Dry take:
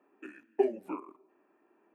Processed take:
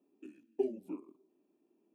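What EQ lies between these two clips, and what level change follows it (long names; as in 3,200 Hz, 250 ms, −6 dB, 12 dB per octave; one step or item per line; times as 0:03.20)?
drawn EQ curve 250 Hz 0 dB, 1,700 Hz −25 dB, 3,300 Hz −4 dB
0.0 dB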